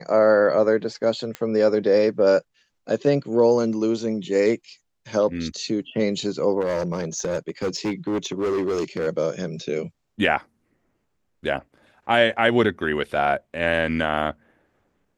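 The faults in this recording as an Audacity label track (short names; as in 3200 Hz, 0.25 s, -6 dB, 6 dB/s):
1.350000	1.350000	pop -15 dBFS
6.610000	9.080000	clipped -20 dBFS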